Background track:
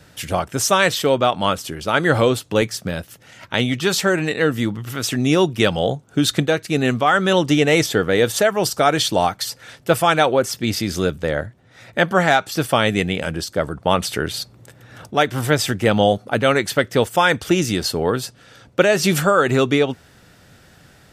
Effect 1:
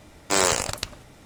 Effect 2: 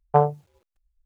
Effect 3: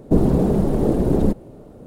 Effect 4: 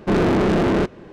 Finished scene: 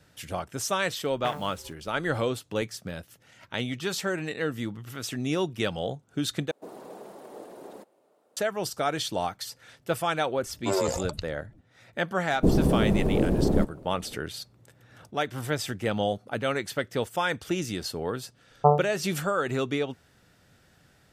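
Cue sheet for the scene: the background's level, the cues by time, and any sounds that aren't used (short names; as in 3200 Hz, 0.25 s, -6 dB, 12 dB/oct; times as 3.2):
background track -11.5 dB
1.1 add 2 -16 dB + spectral compressor 4:1
6.51 replace with 3 -12.5 dB + HPF 760 Hz
10.36 add 1 -4.5 dB + spectral contrast raised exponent 3
12.32 add 3 -5.5 dB
18.5 add 2 -1.5 dB + brick-wall FIR low-pass 1400 Hz
not used: 4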